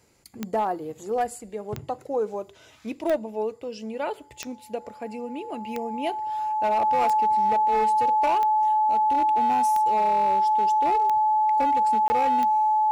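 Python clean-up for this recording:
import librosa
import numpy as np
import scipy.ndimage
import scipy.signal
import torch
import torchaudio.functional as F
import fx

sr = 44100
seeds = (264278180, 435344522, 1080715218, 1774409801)

y = fx.fix_declip(x, sr, threshold_db=-17.5)
y = fx.fix_declick_ar(y, sr, threshold=10.0)
y = fx.notch(y, sr, hz=860.0, q=30.0)
y = fx.fix_interpolate(y, sr, at_s=(12.08,), length_ms=20.0)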